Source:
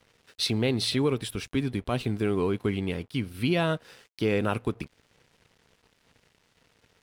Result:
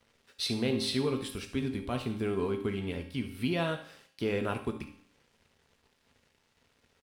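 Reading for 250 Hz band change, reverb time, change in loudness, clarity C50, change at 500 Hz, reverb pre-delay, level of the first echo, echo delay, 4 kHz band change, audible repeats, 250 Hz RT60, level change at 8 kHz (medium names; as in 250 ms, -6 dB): -4.5 dB, 0.65 s, -4.5 dB, 9.0 dB, -4.5 dB, 4 ms, -13.5 dB, 71 ms, -4.5 dB, 1, 0.65 s, -4.5 dB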